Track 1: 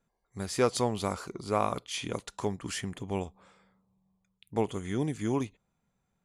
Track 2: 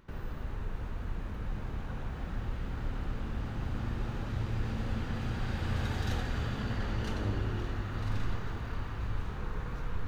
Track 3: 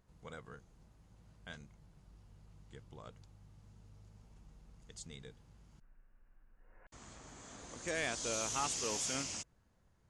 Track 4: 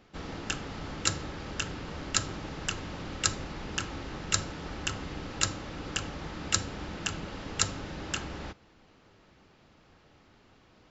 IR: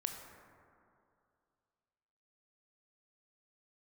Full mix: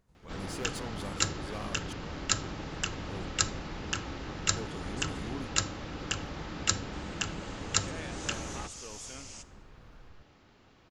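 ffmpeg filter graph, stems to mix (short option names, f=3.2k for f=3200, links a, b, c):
-filter_complex "[0:a]asoftclip=type=tanh:threshold=-31dB,volume=-5.5dB,asplit=3[a][b][c];[a]atrim=end=1.93,asetpts=PTS-STARTPTS,afade=t=out:st=1.926:d=0.004:c=hsin[d];[b]atrim=start=1.93:end=3.06,asetpts=PTS-STARTPTS,volume=0[e];[c]atrim=start=3.06,asetpts=PTS-STARTPTS,afade=t=in:d=0.004:c=hsin[f];[d][e][f]concat=n=3:v=0:a=1[g];[1:a]acompressor=threshold=-36dB:ratio=6,adelay=150,volume=-13dB[h];[2:a]acompressor=threshold=-43dB:ratio=2.5,volume=-4.5dB,asplit=2[i][j];[j]volume=-5dB[k];[3:a]adelay=150,volume=-0.5dB[l];[4:a]atrim=start_sample=2205[m];[k][m]afir=irnorm=-1:irlink=0[n];[g][h][i][l][n]amix=inputs=5:normalize=0"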